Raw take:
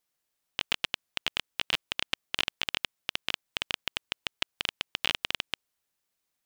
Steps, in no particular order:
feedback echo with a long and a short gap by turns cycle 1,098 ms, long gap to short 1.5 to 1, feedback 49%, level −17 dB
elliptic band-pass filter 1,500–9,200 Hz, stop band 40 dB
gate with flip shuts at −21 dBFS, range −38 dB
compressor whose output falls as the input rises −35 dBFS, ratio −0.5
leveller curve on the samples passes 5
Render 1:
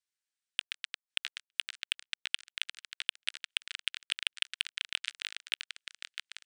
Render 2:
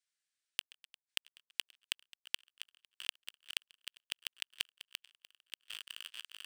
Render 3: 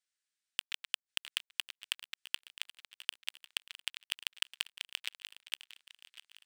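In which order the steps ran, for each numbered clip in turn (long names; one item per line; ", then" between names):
gate with flip, then compressor whose output falls as the input rises, then feedback echo with a long and a short gap by turns, then leveller curve on the samples, then elliptic band-pass filter
elliptic band-pass filter, then compressor whose output falls as the input rises, then leveller curve on the samples, then feedback echo with a long and a short gap by turns, then gate with flip
elliptic band-pass filter, then compressor whose output falls as the input rises, then gate with flip, then leveller curve on the samples, then feedback echo with a long and a short gap by turns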